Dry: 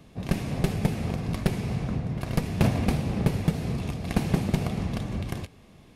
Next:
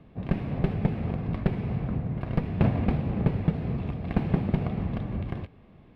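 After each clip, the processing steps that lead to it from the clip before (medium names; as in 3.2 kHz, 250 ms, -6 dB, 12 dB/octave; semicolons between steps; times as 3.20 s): distance through air 460 m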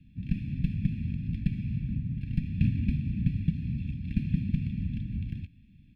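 Chebyshev band-stop 270–2300 Hz, order 3; comb 1.2 ms, depth 70%; trim -4.5 dB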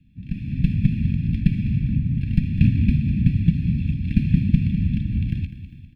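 level rider gain up to 13 dB; feedback delay 201 ms, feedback 43%, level -12.5 dB; trim -1 dB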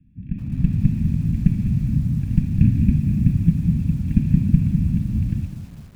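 low-pass 1.4 kHz 12 dB/octave; bit-crushed delay 207 ms, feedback 55%, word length 7-bit, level -13 dB; trim +1 dB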